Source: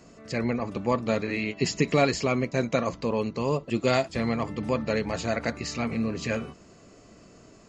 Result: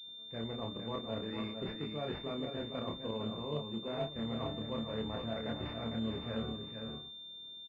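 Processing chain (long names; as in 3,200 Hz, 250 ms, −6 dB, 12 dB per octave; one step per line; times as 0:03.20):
pitch vibrato 1.8 Hz 5.5 cents
reversed playback
downward compressor 12 to 1, threshold −34 dBFS, peak gain reduction 18 dB
reversed playback
downward expander −40 dBFS
double-tracking delay 27 ms −3 dB
multi-tap delay 454/556 ms −6/−16 dB
switching amplifier with a slow clock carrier 3,600 Hz
level −3 dB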